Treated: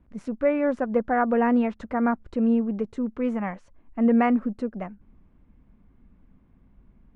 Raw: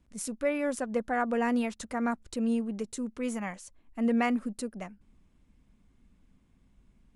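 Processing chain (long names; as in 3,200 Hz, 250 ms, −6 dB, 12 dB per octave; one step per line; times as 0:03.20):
low-pass filter 1,600 Hz 12 dB per octave
level +7 dB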